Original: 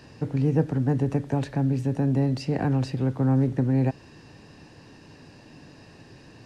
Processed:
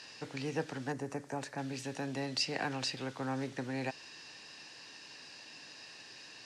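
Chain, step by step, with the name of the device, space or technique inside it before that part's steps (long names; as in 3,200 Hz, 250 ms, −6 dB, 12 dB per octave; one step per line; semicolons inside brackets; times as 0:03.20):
0:00.92–0:01.58: parametric band 3,400 Hz −14.5 dB 1.3 octaves
piezo pickup straight into a mixer (low-pass filter 5,100 Hz 12 dB per octave; first difference)
level +13.5 dB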